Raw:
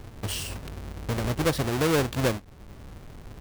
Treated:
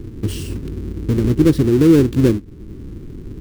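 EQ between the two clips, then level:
low shelf with overshoot 480 Hz +11.5 dB, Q 3
−1.0 dB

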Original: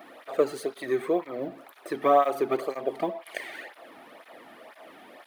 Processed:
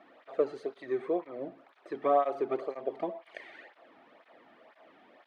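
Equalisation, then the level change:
dynamic equaliser 520 Hz, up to +5 dB, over −34 dBFS, Q 0.71
high-frequency loss of the air 140 metres
−9.0 dB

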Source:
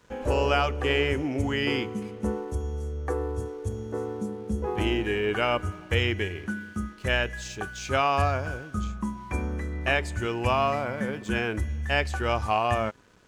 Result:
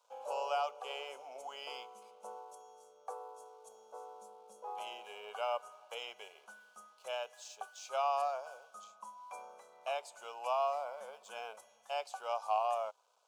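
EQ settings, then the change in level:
four-pole ladder high-pass 520 Hz, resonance 30%
phaser with its sweep stopped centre 760 Hz, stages 4
−2.5 dB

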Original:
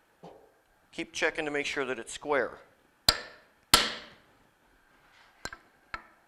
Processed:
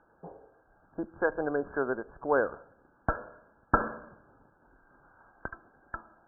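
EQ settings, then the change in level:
linear-phase brick-wall low-pass 1,700 Hz
high-frequency loss of the air 430 metres
+4.0 dB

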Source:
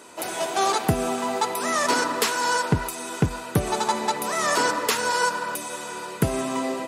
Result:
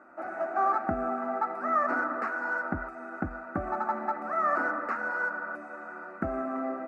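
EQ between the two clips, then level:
low-pass with resonance 1,200 Hz, resonance Q 3.6
phaser with its sweep stopped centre 670 Hz, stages 8
−6.0 dB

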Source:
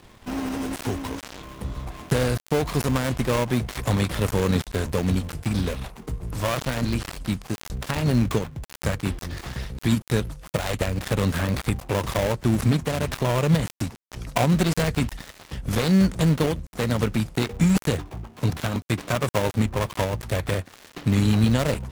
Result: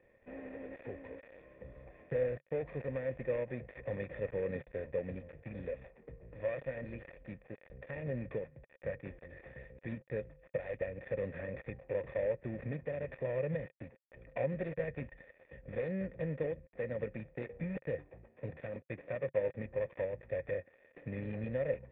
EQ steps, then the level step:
dynamic equaliser 140 Hz, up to +6 dB, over −39 dBFS, Q 3.8
formant resonators in series e
−3.0 dB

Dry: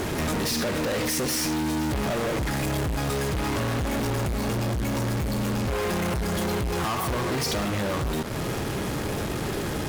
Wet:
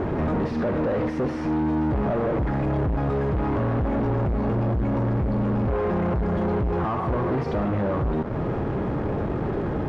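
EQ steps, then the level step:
low-pass filter 1,100 Hz 12 dB per octave
+3.5 dB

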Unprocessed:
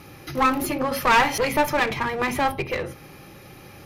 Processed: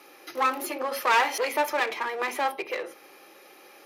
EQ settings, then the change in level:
high-pass filter 350 Hz 24 dB per octave
−4.0 dB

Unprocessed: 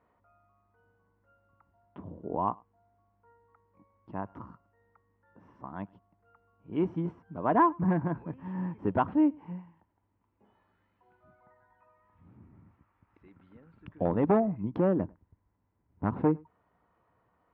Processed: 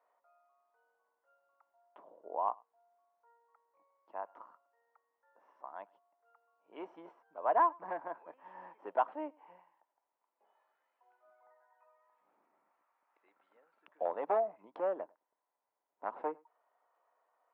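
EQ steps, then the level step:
four-pole ladder high-pass 520 Hz, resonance 40%
+1.5 dB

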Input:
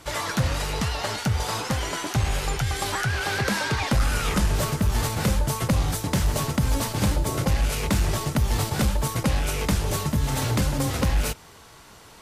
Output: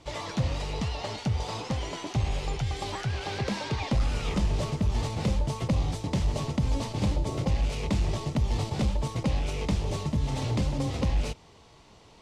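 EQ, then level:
high-frequency loss of the air 100 metres
parametric band 1,500 Hz −11.5 dB 0.68 octaves
−3.5 dB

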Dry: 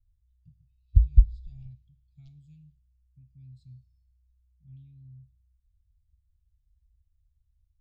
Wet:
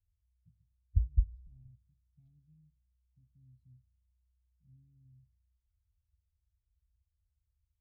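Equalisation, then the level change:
resonant band-pass 150 Hz, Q 1.2
parametric band 140 Hz −14 dB 0.6 octaves
0.0 dB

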